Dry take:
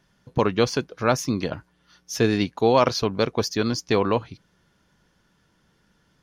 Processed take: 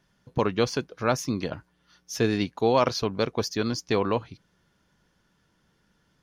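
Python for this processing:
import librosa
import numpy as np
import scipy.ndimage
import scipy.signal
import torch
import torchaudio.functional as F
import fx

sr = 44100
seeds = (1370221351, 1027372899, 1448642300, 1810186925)

y = x * 10.0 ** (-3.5 / 20.0)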